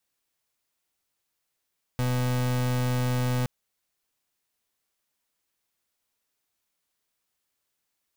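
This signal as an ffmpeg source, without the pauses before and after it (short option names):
-f lavfi -i "aevalsrc='0.0531*(2*lt(mod(125*t,1),0.36)-1)':d=1.47:s=44100"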